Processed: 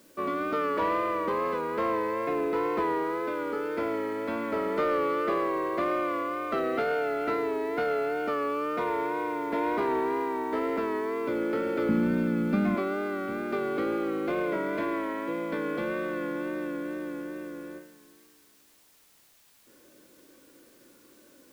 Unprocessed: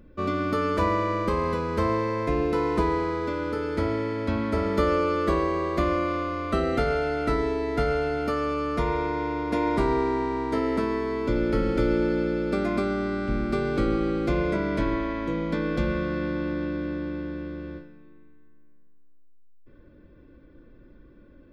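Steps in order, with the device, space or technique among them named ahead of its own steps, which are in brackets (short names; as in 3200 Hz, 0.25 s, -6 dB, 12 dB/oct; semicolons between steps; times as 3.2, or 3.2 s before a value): tape answering machine (BPF 330–2800 Hz; soft clip -19.5 dBFS, distortion -20 dB; wow and flutter; white noise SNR 31 dB); 11.89–12.75 resonant low shelf 290 Hz +10 dB, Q 3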